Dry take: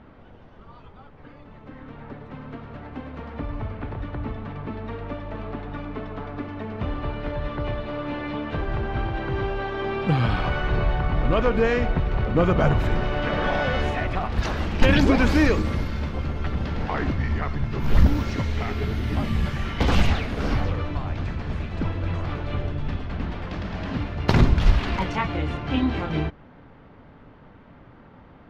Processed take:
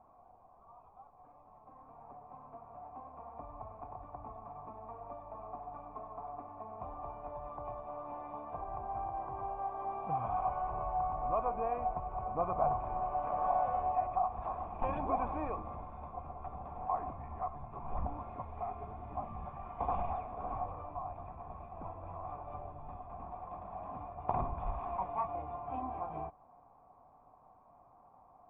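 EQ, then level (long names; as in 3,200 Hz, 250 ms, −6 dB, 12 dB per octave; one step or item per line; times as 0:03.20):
formant resonators in series a
low-shelf EQ 130 Hz +4.5 dB
high-shelf EQ 3,000 Hz +6.5 dB
+2.0 dB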